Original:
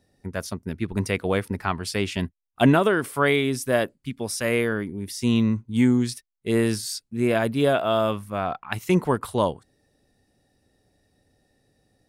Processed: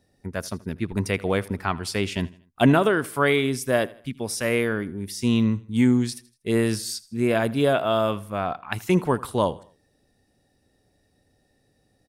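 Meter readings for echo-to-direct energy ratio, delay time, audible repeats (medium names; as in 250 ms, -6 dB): -20.0 dB, 80 ms, 2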